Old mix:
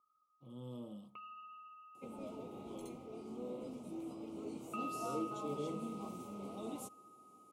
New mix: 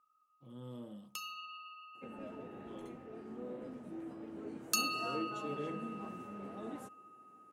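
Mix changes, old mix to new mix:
first sound: remove Chebyshev low-pass 2.3 kHz, order 5; second sound: add treble shelf 3.1 kHz -11 dB; master: remove Butterworth band-stop 1.7 kHz, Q 1.6

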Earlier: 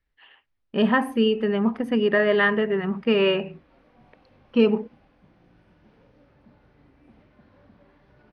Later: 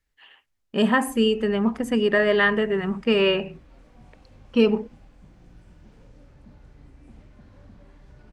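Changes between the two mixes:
background: remove high-pass 260 Hz 6 dB/octave; master: remove boxcar filter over 6 samples

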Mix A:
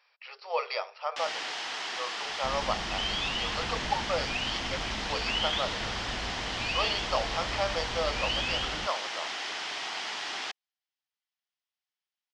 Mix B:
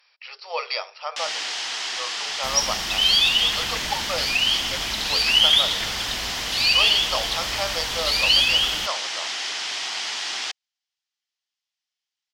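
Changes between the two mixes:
second sound: remove distance through air 390 m; master: add peaking EQ 12 kHz +13.5 dB 2.9 oct

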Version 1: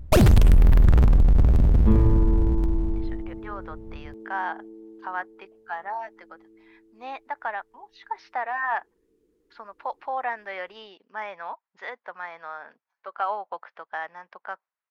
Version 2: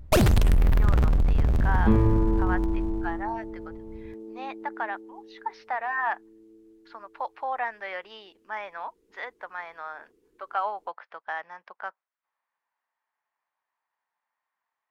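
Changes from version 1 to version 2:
speech: entry -2.65 s; second sound +4.5 dB; master: add bass shelf 420 Hz -5 dB

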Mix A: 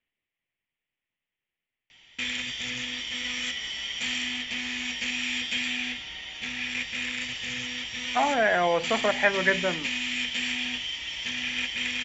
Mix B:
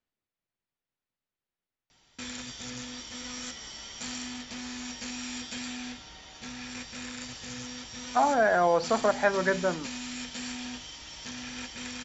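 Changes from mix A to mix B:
speech: remove distance through air 230 m; master: add high-order bell 2.5 kHz -14.5 dB 1.1 oct

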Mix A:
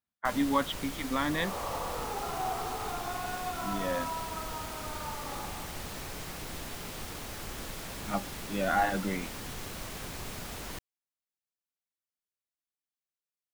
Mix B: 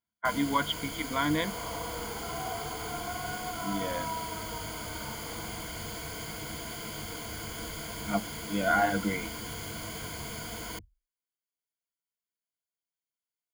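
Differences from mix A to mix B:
first sound: add high-pass 48 Hz; second sound -5.0 dB; master: add rippled EQ curve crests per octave 1.8, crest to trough 13 dB

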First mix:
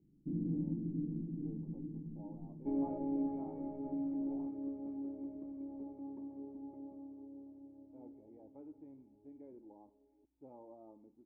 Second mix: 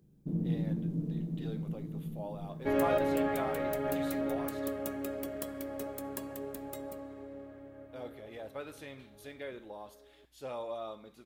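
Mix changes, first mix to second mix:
first sound: add tilt EQ +2 dB/octave; master: remove cascade formant filter u

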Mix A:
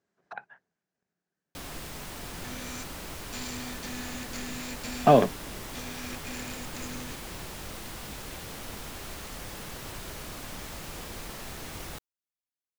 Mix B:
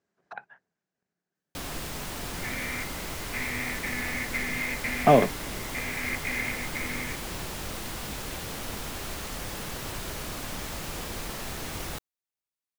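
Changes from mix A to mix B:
first sound +4.5 dB; second sound: add resonant low-pass 2.1 kHz, resonance Q 13

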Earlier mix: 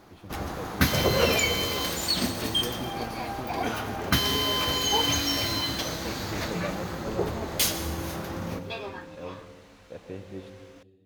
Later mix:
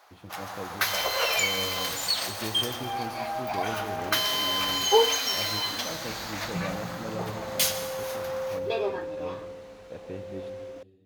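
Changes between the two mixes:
first sound: add high-pass 620 Hz 24 dB/octave; second sound: add peaking EQ 480 Hz +13.5 dB 1.1 oct

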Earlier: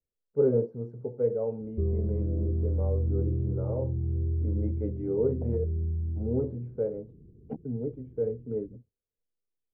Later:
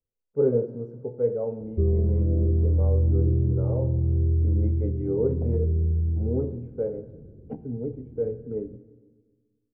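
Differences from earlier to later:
background +4.5 dB; reverb: on, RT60 1.5 s

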